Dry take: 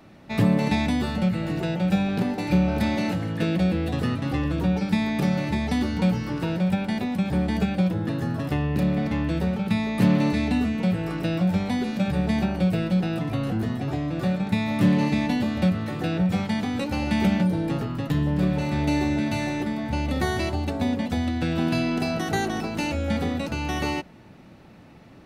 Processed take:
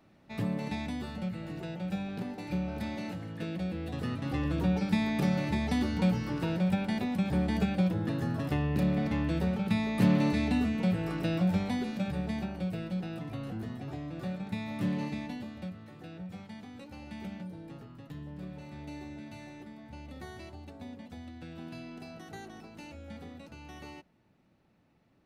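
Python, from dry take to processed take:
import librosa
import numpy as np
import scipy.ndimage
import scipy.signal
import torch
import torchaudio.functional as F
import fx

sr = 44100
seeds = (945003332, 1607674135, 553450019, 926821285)

y = fx.gain(x, sr, db=fx.line((3.69, -12.5), (4.53, -5.0), (11.53, -5.0), (12.51, -12.0), (15.02, -12.0), (15.76, -20.0)))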